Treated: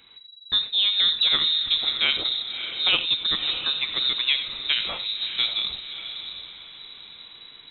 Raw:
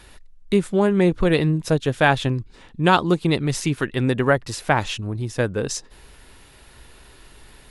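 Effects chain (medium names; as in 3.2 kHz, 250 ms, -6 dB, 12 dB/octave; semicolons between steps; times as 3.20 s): level rider gain up to 5 dB; echo that smears into a reverb 615 ms, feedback 40%, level -9 dB; gated-style reverb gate 110 ms rising, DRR 11.5 dB; frequency inversion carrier 3.9 kHz; trim -7.5 dB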